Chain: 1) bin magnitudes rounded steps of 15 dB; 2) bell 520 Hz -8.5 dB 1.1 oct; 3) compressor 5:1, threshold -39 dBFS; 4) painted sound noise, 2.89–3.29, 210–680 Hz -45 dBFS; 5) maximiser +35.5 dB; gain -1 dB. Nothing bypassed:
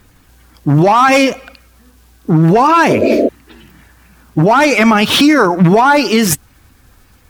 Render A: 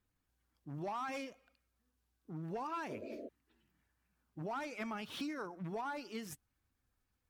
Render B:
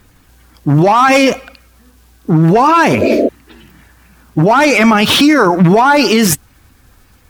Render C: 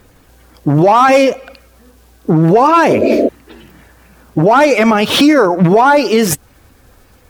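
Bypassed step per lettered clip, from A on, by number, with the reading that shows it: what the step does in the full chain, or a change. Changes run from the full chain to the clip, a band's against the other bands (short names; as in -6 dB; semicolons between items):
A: 5, crest factor change +3.0 dB; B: 3, mean gain reduction 8.5 dB; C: 2, 500 Hz band +4.5 dB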